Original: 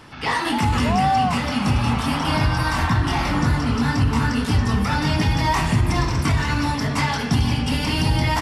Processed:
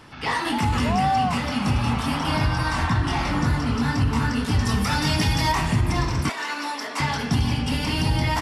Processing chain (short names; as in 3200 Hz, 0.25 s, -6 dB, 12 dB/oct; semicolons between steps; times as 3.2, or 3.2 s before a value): 2.56–3.32 LPF 11000 Hz 24 dB/oct; 4.59–5.52 high shelf 3800 Hz +10 dB; 6.29–7 Bessel high-pass 470 Hz, order 6; gain -2.5 dB